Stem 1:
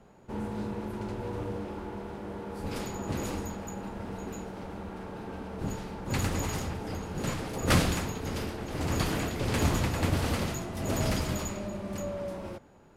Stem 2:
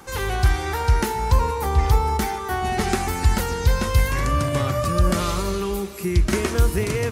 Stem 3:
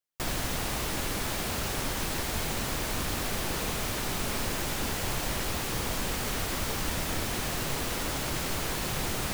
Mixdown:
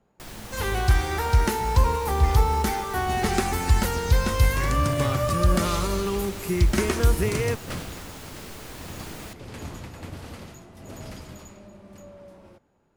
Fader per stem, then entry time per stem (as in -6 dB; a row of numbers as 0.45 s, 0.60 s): -10.5 dB, -1.5 dB, -9.5 dB; 0.00 s, 0.45 s, 0.00 s